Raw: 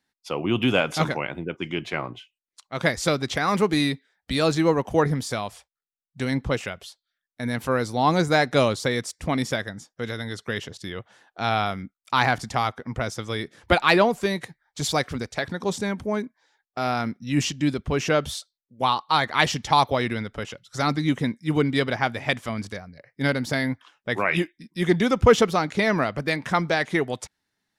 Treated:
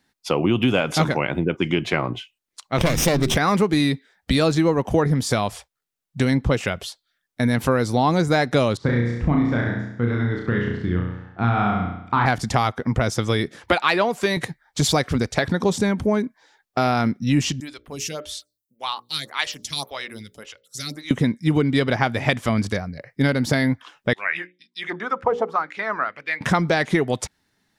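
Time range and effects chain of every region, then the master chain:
0:02.78–0:03.37: lower of the sound and its delayed copy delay 0.35 ms + hum removal 77.22 Hz, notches 5 + envelope flattener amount 50%
0:08.77–0:12.26: low-pass filter 1,300 Hz + parametric band 580 Hz −10 dB 1.2 octaves + flutter between parallel walls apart 5.8 metres, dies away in 0.73 s
0:13.57–0:14.37: low-pass filter 1,900 Hz 6 dB per octave + spectral tilt +3.5 dB per octave
0:17.60–0:21.11: first-order pre-emphasis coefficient 0.9 + mains-hum notches 60/120/180/240/300/360/420/480/540/600 Hz + phaser with staggered stages 1.8 Hz
0:24.13–0:26.41: mains-hum notches 60/120/180/240/300/360/420/480/540 Hz + dynamic equaliser 2,700 Hz, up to −5 dB, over −37 dBFS, Q 0.78 + envelope filter 760–4,500 Hz, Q 3.4, down, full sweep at −15 dBFS
whole clip: low-shelf EQ 440 Hz +4.5 dB; downward compressor 4 to 1, threshold −25 dBFS; level +8.5 dB

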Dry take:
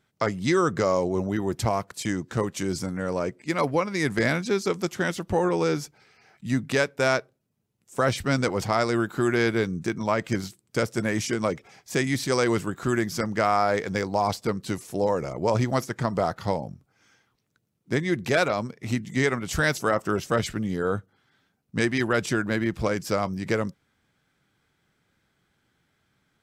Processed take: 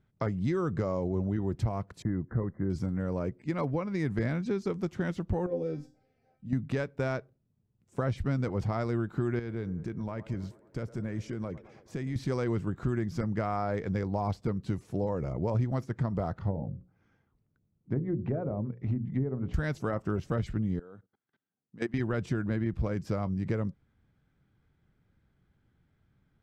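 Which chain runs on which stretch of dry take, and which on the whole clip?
0:02.02–0:02.70: de-essing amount 100% + linear-phase brick-wall low-pass 2,100 Hz + notch filter 860 Hz, Q 17
0:05.46–0:06.53: low shelf with overshoot 790 Hz +7.5 dB, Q 3 + mains-hum notches 60/120/180/240/300/360 Hz + tuned comb filter 260 Hz, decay 0.32 s, mix 90%
0:09.39–0:12.16: downward compressor 2 to 1, threshold −37 dBFS + delay with a band-pass on its return 108 ms, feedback 68%, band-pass 710 Hz, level −15 dB
0:16.39–0:19.54: high-shelf EQ 2,700 Hz −11.5 dB + mains-hum notches 60/120/180/240/300/360/420/480/540 Hz + treble cut that deepens with the level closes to 610 Hz, closed at −22 dBFS
0:20.79–0:21.94: output level in coarse steps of 22 dB + high-pass filter 230 Hz
whole clip: RIAA equalisation playback; downward compressor 2.5 to 1, threshold −21 dBFS; level −7 dB

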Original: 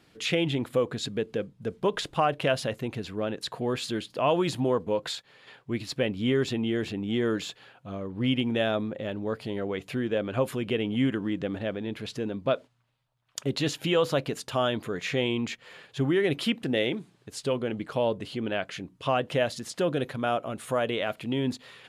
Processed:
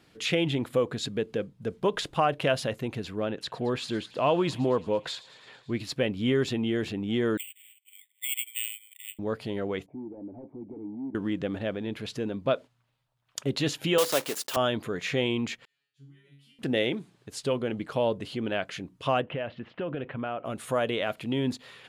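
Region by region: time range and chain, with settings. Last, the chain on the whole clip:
0:03.27–0:05.79: high-shelf EQ 8,100 Hz −11 dB + delay with a high-pass on its return 111 ms, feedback 73%, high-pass 1,600 Hz, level −17 dB
0:07.37–0:09.19: Chebyshev band-pass filter 2,000–4,300 Hz, order 5 + bad sample-rate conversion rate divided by 8×, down filtered, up zero stuff
0:09.86–0:11.15: parametric band 660 Hz +10 dB 0.51 octaves + gain into a clipping stage and back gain 28.5 dB + formant resonators in series u
0:13.98–0:14.57: one scale factor per block 3 bits + high-pass filter 310 Hz + high-shelf EQ 4,900 Hz +7.5 dB
0:15.65–0:16.59: high-pass filter 42 Hz + guitar amp tone stack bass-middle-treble 6-0-2 + tuned comb filter 140 Hz, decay 0.47 s, mix 100%
0:19.21–0:20.45: Chebyshev low-pass filter 2,900 Hz, order 4 + downward compressor 4 to 1, threshold −29 dBFS
whole clip: no processing

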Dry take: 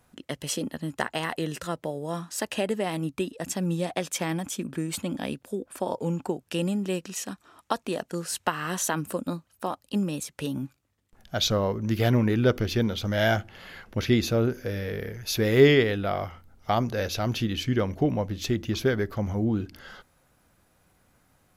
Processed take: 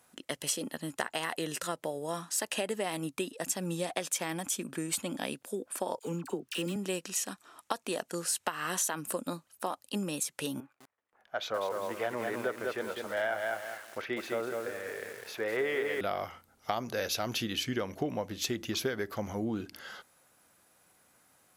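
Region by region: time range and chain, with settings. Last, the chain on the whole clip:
0:05.99–0:06.76: running median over 5 samples + flat-topped bell 690 Hz −8 dB 1 octave + all-pass dispersion lows, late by 43 ms, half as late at 1,200 Hz
0:10.60–0:16.01: three-way crossover with the lows and the highs turned down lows −16 dB, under 430 Hz, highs −22 dB, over 2,200 Hz + feedback echo at a low word length 202 ms, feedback 35%, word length 8 bits, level −4.5 dB
whole clip: high-pass filter 430 Hz 6 dB per octave; parametric band 9,700 Hz +6 dB 1.2 octaves; downward compressor, threshold −28 dBFS

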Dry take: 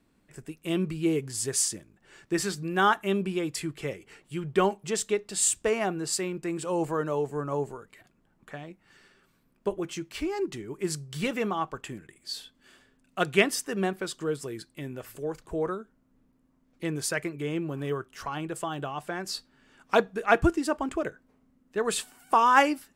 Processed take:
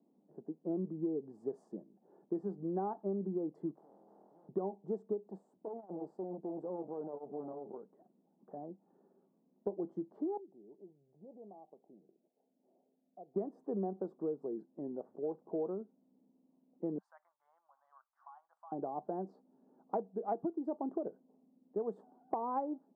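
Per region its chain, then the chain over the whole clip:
0:03.75–0:04.49: downward compressor 3 to 1, threshold −48 dBFS + flutter between parallel walls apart 4.2 metres, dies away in 0.4 s + every bin compressed towards the loudest bin 10 to 1
0:05.29–0:08.57: downward compressor, threshold −29 dBFS + gain into a clipping stage and back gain 31.5 dB + saturating transformer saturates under 330 Hz
0:10.37–0:13.36: downward compressor 2.5 to 1, threshold −48 dBFS + transistor ladder low-pass 810 Hz, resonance 50%
0:16.98–0:18.72: inverse Chebyshev band-stop filter 120–440 Hz, stop band 60 dB + high-shelf EQ 4,100 Hz −8.5 dB
whole clip: elliptic band-pass filter 190–810 Hz, stop band 50 dB; downward compressor 10 to 1, threshold −31 dBFS; level −1.5 dB

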